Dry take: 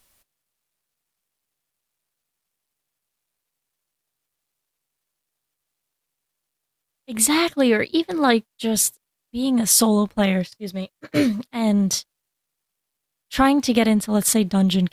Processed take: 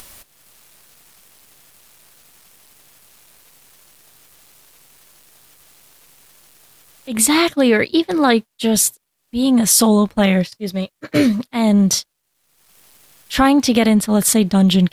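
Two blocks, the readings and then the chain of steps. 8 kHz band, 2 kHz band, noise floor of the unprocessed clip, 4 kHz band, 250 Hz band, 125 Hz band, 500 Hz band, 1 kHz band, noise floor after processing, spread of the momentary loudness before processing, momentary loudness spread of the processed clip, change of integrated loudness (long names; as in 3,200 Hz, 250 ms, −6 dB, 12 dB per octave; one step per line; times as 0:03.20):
+3.5 dB, +4.0 dB, −81 dBFS, +4.5 dB, +5.0 dB, +5.5 dB, +4.0 dB, +3.5 dB, −70 dBFS, 11 LU, 10 LU, +4.0 dB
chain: in parallel at +2.5 dB: brickwall limiter −14 dBFS, peak gain reduction 10 dB
on the sum: upward compression, threshold −27 dBFS
level −1 dB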